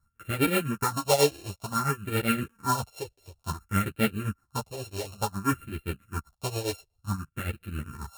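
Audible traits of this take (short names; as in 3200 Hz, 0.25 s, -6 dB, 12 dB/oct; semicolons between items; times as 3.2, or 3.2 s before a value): a buzz of ramps at a fixed pitch in blocks of 32 samples; phasing stages 4, 0.56 Hz, lowest notch 210–1000 Hz; tremolo triangle 7.5 Hz, depth 85%; a shimmering, thickened sound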